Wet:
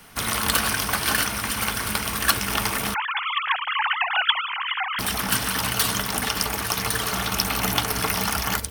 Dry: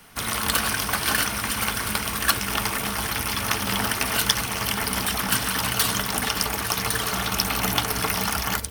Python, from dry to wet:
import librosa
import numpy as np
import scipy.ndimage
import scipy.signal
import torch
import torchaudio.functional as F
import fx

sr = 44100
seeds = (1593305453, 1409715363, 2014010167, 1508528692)

y = fx.sine_speech(x, sr, at=(2.94, 4.99))
y = fx.rider(y, sr, range_db=10, speed_s=2.0)